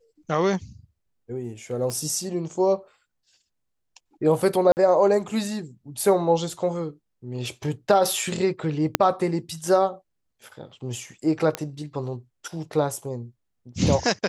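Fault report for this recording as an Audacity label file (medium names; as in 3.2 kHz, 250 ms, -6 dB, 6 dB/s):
1.900000	1.900000	pop -18 dBFS
4.720000	4.770000	dropout 49 ms
8.950000	8.950000	pop -1 dBFS
11.550000	11.550000	pop -10 dBFS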